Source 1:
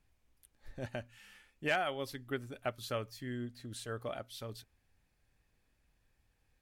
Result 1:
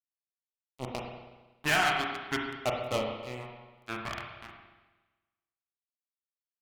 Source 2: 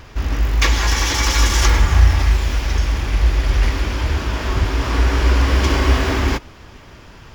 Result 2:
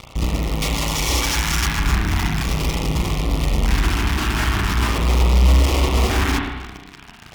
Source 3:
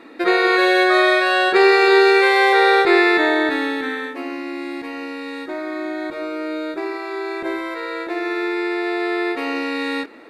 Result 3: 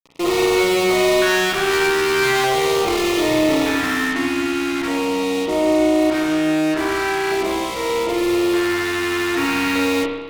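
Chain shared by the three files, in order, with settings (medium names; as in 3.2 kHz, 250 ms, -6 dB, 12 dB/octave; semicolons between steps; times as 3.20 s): fuzz box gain 33 dB, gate -35 dBFS; LFO notch square 0.41 Hz 520–1600 Hz; spring tank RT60 1.2 s, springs 32/46 ms, chirp 80 ms, DRR 0 dB; trim -5.5 dB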